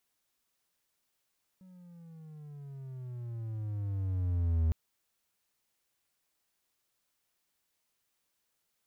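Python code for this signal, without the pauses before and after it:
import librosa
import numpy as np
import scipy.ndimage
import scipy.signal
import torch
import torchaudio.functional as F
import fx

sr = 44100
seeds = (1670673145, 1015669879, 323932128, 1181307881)

y = fx.riser_tone(sr, length_s=3.11, level_db=-22, wave='triangle', hz=188.0, rise_st=-15.0, swell_db=28.0)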